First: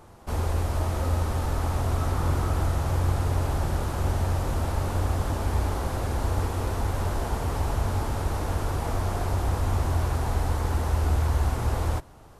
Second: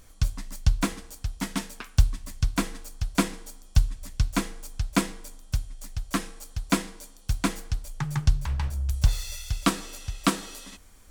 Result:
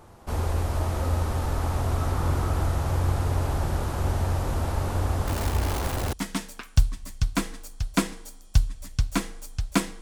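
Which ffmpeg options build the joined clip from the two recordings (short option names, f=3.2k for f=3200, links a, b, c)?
-filter_complex "[0:a]asettb=1/sr,asplit=3[a][b][c];[a]atrim=end=5.274[d];[b]atrim=start=5.27:end=6.13,asetpts=PTS-STARTPTS,afade=t=in:d=0.004:c=qsin,afade=t=out:st=0.856:d=0.004:c=qsin,acrusher=bits=6:dc=4:mix=0:aa=0.000001[e];[c]atrim=start=6.126[f];[d][e]acrossfade=d=0.004:c1=hsin:c2=qsin[g];[g][f]acrossfade=d=0.004:c1=qsin:c2=hsin,apad=whole_dur=10.01,atrim=end=10.01,atrim=end=6.132[h];[1:a]atrim=start=1.338:end=5.22[i];[h][i]acrossfade=d=0.004:c1=hsin:c2=hsin"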